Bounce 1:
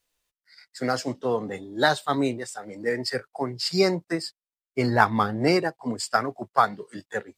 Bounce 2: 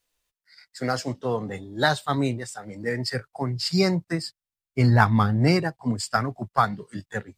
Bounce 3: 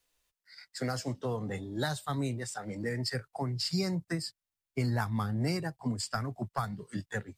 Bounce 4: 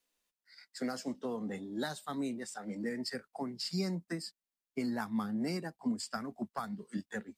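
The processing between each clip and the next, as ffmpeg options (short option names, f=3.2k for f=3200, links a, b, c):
-af "asubboost=boost=6:cutoff=160"
-filter_complex "[0:a]acrossover=split=160|6700[a][b][c];[a]acompressor=threshold=-36dB:ratio=4[d];[b]acompressor=threshold=-34dB:ratio=4[e];[c]acompressor=threshold=-42dB:ratio=4[f];[d][e][f]amix=inputs=3:normalize=0"
-af "lowshelf=f=160:t=q:w=3:g=-9.5,volume=-5dB"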